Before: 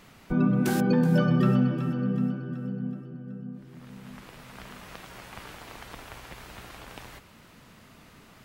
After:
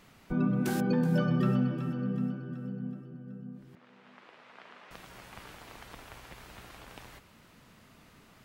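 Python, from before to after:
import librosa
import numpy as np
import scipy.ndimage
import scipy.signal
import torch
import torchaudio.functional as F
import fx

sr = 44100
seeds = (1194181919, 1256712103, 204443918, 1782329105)

y = fx.bandpass_edges(x, sr, low_hz=400.0, high_hz=3300.0, at=(3.75, 4.91))
y = y * librosa.db_to_amplitude(-5.0)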